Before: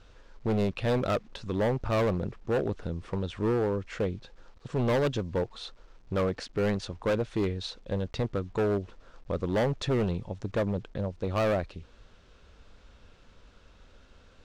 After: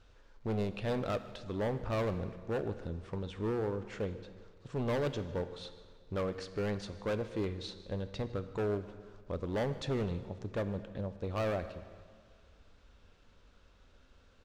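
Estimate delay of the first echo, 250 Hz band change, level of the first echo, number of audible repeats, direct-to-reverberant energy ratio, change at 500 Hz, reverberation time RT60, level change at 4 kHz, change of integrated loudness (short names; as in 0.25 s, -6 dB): 0.154 s, -7.0 dB, -21.5 dB, 1, 10.5 dB, -6.5 dB, 1.9 s, -6.5 dB, -6.5 dB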